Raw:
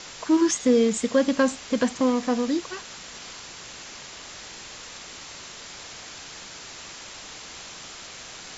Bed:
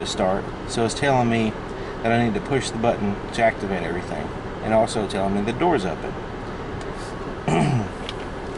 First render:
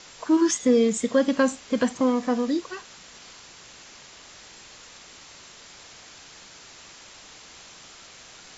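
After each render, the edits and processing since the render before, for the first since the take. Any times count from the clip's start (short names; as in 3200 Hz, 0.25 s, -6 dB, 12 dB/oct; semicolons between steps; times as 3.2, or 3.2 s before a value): noise print and reduce 6 dB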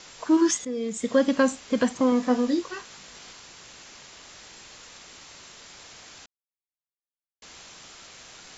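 0.65–1.13 fade in quadratic, from -13.5 dB; 2.1–3.32 doubler 20 ms -7 dB; 6.26–7.42 mute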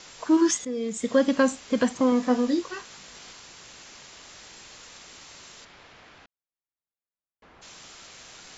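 5.64–7.61 LPF 3000 Hz -> 1400 Hz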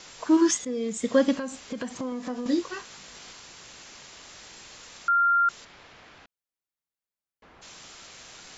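1.36–2.46 compressor 5:1, threshold -30 dBFS; 5.08–5.49 bleep 1390 Hz -18 dBFS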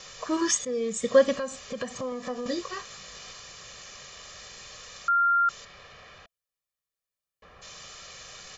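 notch 670 Hz, Q 12; comb 1.7 ms, depth 70%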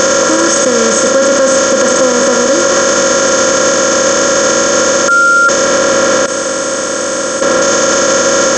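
per-bin compression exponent 0.2; maximiser +15.5 dB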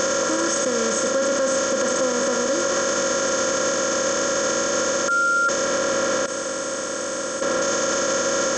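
gain -12 dB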